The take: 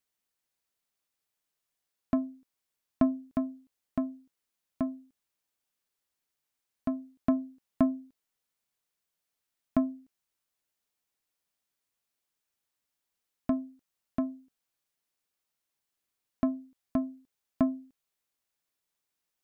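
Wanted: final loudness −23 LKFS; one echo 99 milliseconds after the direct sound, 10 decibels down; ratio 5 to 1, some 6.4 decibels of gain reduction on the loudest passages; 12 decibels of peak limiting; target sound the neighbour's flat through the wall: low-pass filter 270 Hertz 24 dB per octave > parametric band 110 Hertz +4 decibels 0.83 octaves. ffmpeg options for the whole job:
ffmpeg -i in.wav -af "acompressor=threshold=-27dB:ratio=5,alimiter=level_in=2.5dB:limit=-24dB:level=0:latency=1,volume=-2.5dB,lowpass=frequency=270:width=0.5412,lowpass=frequency=270:width=1.3066,equalizer=frequency=110:width_type=o:width=0.83:gain=4,aecho=1:1:99:0.316,volume=20dB" out.wav

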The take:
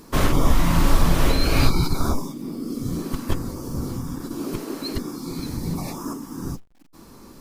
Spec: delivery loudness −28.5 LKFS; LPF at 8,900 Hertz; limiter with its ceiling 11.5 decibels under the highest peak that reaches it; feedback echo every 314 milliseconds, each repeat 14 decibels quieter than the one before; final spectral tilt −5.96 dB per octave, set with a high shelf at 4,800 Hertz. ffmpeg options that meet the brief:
ffmpeg -i in.wav -af "lowpass=8900,highshelf=frequency=4800:gain=-5,alimiter=limit=-15dB:level=0:latency=1,aecho=1:1:314|628:0.2|0.0399,volume=0.5dB" out.wav

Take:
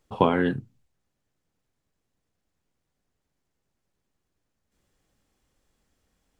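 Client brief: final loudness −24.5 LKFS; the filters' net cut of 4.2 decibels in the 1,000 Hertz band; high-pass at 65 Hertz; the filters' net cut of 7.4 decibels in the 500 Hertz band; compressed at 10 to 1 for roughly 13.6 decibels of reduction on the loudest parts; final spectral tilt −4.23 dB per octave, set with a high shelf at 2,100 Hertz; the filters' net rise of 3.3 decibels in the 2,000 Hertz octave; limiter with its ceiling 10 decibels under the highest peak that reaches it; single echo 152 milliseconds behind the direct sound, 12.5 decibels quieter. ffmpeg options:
ffmpeg -i in.wav -af "highpass=65,equalizer=frequency=500:width_type=o:gain=-9,equalizer=frequency=1000:width_type=o:gain=-4.5,equalizer=frequency=2000:width_type=o:gain=3,highshelf=frequency=2100:gain=7.5,acompressor=threshold=-32dB:ratio=10,alimiter=level_in=2.5dB:limit=-24dB:level=0:latency=1,volume=-2.5dB,aecho=1:1:152:0.237,volume=15.5dB" out.wav

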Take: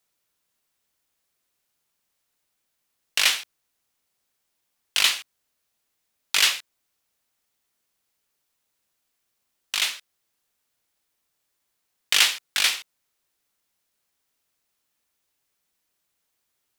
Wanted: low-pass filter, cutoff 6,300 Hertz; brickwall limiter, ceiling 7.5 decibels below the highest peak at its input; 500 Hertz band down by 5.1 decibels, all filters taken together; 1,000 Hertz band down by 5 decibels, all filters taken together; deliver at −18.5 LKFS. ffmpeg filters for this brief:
ffmpeg -i in.wav -af "lowpass=6300,equalizer=frequency=500:width_type=o:gain=-4.5,equalizer=frequency=1000:width_type=o:gain=-6,volume=7.5dB,alimiter=limit=-3.5dB:level=0:latency=1" out.wav

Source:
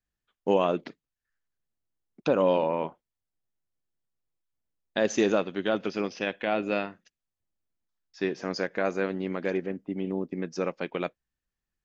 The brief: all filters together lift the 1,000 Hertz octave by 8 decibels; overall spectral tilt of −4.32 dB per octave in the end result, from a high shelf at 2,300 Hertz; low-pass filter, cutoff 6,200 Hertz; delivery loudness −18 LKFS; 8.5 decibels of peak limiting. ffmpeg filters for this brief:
ffmpeg -i in.wav -af "lowpass=6200,equalizer=frequency=1000:width_type=o:gain=8.5,highshelf=frequency=2300:gain=8.5,volume=11dB,alimiter=limit=-3dB:level=0:latency=1" out.wav

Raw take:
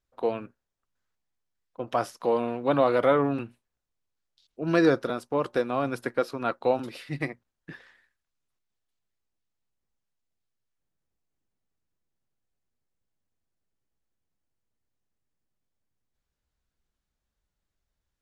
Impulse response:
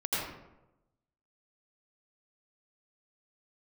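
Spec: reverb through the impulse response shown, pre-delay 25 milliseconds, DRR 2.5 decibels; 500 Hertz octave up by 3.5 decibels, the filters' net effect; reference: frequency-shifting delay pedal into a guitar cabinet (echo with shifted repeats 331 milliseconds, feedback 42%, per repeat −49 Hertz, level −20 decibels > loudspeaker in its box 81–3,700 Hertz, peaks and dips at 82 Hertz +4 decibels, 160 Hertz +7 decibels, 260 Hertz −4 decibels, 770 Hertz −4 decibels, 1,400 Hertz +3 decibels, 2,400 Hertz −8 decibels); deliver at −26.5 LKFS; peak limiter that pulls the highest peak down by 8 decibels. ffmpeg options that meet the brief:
-filter_complex "[0:a]equalizer=frequency=500:width_type=o:gain=4.5,alimiter=limit=-14dB:level=0:latency=1,asplit=2[link_01][link_02];[1:a]atrim=start_sample=2205,adelay=25[link_03];[link_02][link_03]afir=irnorm=-1:irlink=0,volume=-10dB[link_04];[link_01][link_04]amix=inputs=2:normalize=0,asplit=4[link_05][link_06][link_07][link_08];[link_06]adelay=331,afreqshift=-49,volume=-20dB[link_09];[link_07]adelay=662,afreqshift=-98,volume=-27.5dB[link_10];[link_08]adelay=993,afreqshift=-147,volume=-35.1dB[link_11];[link_05][link_09][link_10][link_11]amix=inputs=4:normalize=0,highpass=81,equalizer=frequency=82:width_type=q:width=4:gain=4,equalizer=frequency=160:width_type=q:width=4:gain=7,equalizer=frequency=260:width_type=q:width=4:gain=-4,equalizer=frequency=770:width_type=q:width=4:gain=-4,equalizer=frequency=1400:width_type=q:width=4:gain=3,equalizer=frequency=2400:width_type=q:width=4:gain=-8,lowpass=frequency=3700:width=0.5412,lowpass=frequency=3700:width=1.3066,volume=-1.5dB"

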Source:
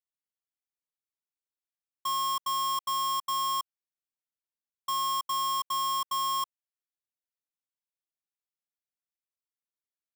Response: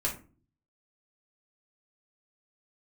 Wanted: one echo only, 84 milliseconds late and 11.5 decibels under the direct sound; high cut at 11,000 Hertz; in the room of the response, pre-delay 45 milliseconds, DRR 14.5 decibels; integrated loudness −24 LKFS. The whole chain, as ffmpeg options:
-filter_complex "[0:a]lowpass=11000,aecho=1:1:84:0.266,asplit=2[link_01][link_02];[1:a]atrim=start_sample=2205,adelay=45[link_03];[link_02][link_03]afir=irnorm=-1:irlink=0,volume=-20dB[link_04];[link_01][link_04]amix=inputs=2:normalize=0,volume=6dB"

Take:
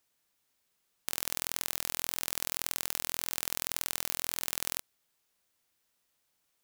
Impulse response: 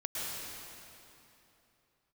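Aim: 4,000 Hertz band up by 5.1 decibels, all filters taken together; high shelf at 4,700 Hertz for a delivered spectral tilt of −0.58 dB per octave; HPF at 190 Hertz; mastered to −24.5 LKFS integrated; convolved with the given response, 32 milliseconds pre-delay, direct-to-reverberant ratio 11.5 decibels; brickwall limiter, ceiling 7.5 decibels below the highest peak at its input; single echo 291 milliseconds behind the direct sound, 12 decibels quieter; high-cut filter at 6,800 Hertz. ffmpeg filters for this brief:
-filter_complex "[0:a]highpass=190,lowpass=6800,equalizer=frequency=4000:width_type=o:gain=5.5,highshelf=frequency=4700:gain=3,alimiter=limit=-16.5dB:level=0:latency=1,aecho=1:1:291:0.251,asplit=2[link_01][link_02];[1:a]atrim=start_sample=2205,adelay=32[link_03];[link_02][link_03]afir=irnorm=-1:irlink=0,volume=-16dB[link_04];[link_01][link_04]amix=inputs=2:normalize=0,volume=15.5dB"

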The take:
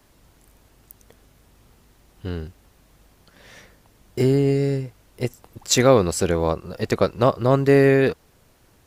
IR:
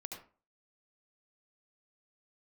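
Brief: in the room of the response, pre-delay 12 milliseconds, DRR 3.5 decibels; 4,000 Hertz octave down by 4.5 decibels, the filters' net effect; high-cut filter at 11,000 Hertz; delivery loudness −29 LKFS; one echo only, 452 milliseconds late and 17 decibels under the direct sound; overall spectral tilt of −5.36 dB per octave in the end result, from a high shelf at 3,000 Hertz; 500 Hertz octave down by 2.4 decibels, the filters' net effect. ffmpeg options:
-filter_complex "[0:a]lowpass=11000,equalizer=frequency=500:width_type=o:gain=-3,highshelf=frequency=3000:gain=4.5,equalizer=frequency=4000:width_type=o:gain=-9,aecho=1:1:452:0.141,asplit=2[link_01][link_02];[1:a]atrim=start_sample=2205,adelay=12[link_03];[link_02][link_03]afir=irnorm=-1:irlink=0,volume=-1dB[link_04];[link_01][link_04]amix=inputs=2:normalize=0,volume=-9dB"

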